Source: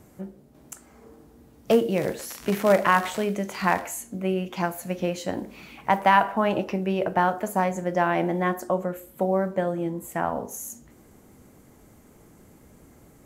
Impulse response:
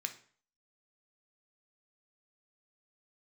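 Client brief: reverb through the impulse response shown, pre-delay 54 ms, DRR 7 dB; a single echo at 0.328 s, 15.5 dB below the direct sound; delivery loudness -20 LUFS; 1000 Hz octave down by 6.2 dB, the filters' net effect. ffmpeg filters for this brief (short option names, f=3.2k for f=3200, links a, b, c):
-filter_complex "[0:a]equalizer=f=1k:t=o:g=-8,aecho=1:1:328:0.168,asplit=2[a][b];[1:a]atrim=start_sample=2205,adelay=54[c];[b][c]afir=irnorm=-1:irlink=0,volume=-7dB[d];[a][d]amix=inputs=2:normalize=0,volume=7dB"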